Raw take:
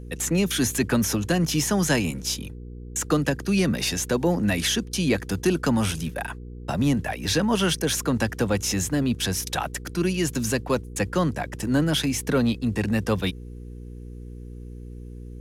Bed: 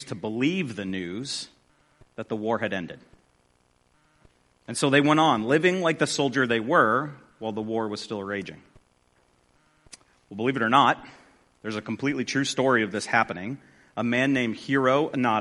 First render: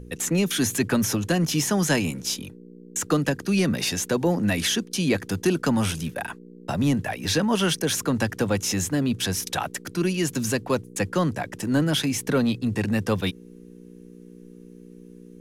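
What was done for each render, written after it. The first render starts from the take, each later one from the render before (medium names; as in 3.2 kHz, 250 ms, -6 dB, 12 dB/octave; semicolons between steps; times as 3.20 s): de-hum 60 Hz, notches 2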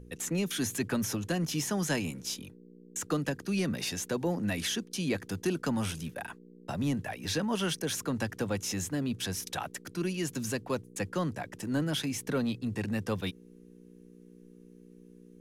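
trim -8.5 dB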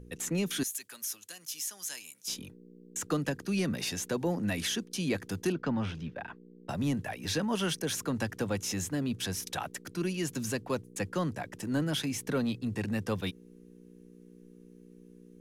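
0.63–2.28 s: differentiator; 5.52–6.69 s: distance through air 230 m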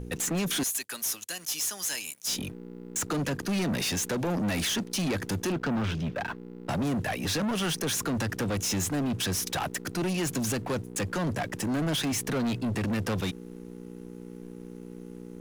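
peak limiter -24.5 dBFS, peak gain reduction 6.5 dB; waveshaping leveller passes 3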